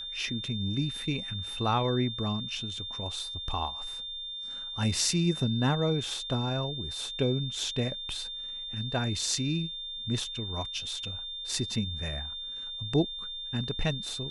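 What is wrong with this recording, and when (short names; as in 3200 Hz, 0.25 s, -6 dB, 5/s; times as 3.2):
tone 3600 Hz -36 dBFS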